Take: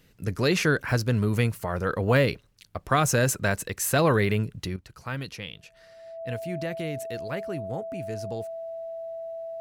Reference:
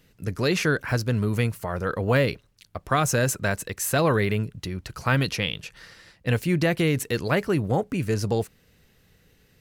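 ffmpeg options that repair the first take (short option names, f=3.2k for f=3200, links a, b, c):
-af "bandreject=f=660:w=30,asetnsamples=n=441:p=0,asendcmd='4.76 volume volume 11dB',volume=0dB"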